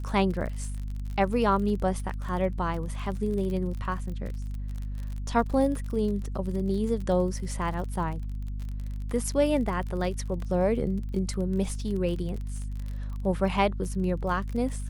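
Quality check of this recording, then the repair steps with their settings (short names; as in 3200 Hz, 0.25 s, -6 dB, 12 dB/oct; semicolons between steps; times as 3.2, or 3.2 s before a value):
crackle 39/s -34 dBFS
hum 50 Hz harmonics 5 -33 dBFS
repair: de-click; de-hum 50 Hz, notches 5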